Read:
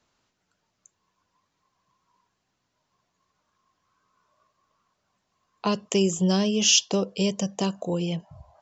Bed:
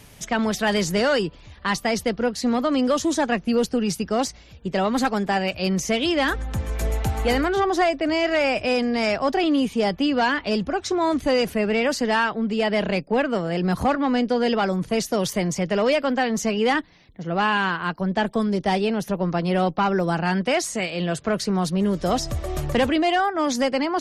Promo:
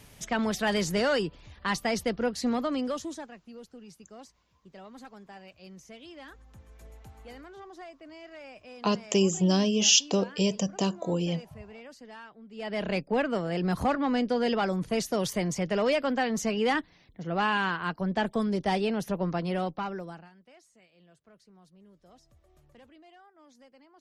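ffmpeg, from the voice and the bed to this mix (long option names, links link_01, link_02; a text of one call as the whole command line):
ffmpeg -i stem1.wav -i stem2.wav -filter_complex "[0:a]adelay=3200,volume=-1.5dB[link_01];[1:a]volume=14.5dB,afade=type=out:start_time=2.45:duration=0.87:silence=0.1,afade=type=in:start_time=12.51:duration=0.44:silence=0.1,afade=type=out:start_time=19.22:duration=1.08:silence=0.0334965[link_02];[link_01][link_02]amix=inputs=2:normalize=0" out.wav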